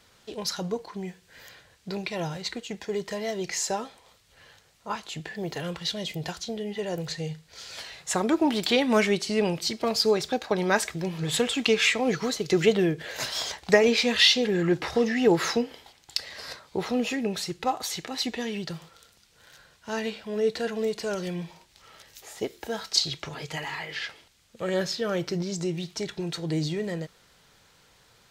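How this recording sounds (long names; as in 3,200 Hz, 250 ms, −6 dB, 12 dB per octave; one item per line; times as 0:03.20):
background noise floor −60 dBFS
spectral slope −3.5 dB per octave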